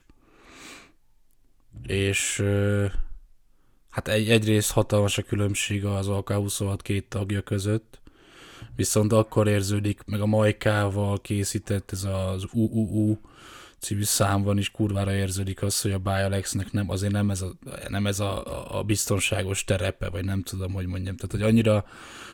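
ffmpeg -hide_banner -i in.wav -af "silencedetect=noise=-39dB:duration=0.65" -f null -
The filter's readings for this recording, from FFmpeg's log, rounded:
silence_start: 0.83
silence_end: 1.75 | silence_duration: 0.92
silence_start: 3.17
silence_end: 3.94 | silence_duration: 0.77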